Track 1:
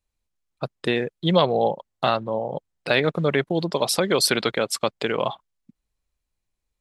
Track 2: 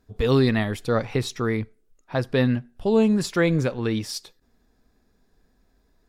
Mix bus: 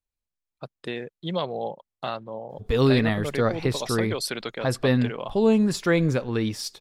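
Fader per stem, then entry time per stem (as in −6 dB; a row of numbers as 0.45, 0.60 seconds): −9.5, −0.5 decibels; 0.00, 2.50 seconds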